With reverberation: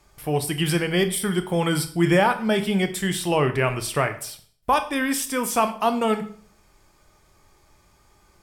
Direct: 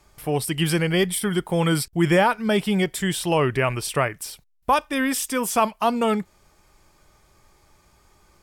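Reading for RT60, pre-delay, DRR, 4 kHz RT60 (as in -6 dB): 0.50 s, 15 ms, 8.0 dB, 0.45 s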